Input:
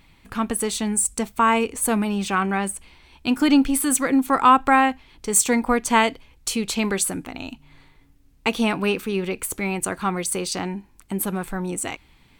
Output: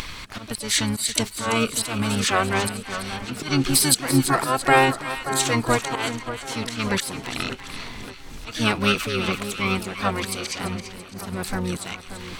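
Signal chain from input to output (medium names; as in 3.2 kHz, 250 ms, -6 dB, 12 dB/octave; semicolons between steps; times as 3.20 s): peaking EQ 5.3 kHz +13.5 dB 2.2 oct; upward compressor, threshold -20 dBFS; slow attack 241 ms; two-band feedback delay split 1.7 kHz, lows 582 ms, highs 337 ms, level -10 dB; harmony voices -12 st -3 dB, +5 st -9 dB; trim -3.5 dB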